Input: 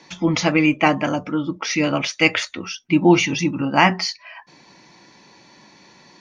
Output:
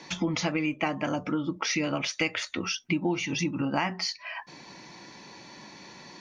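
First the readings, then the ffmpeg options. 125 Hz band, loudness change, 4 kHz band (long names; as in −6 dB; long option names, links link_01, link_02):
−9.5 dB, −10.5 dB, −7.5 dB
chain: -af "acompressor=threshold=-28dB:ratio=6,volume=2dB"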